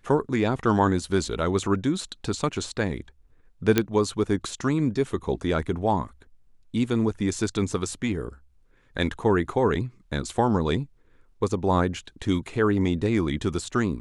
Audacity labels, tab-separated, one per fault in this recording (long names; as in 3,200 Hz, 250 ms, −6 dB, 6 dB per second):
3.780000	3.780000	click −5 dBFS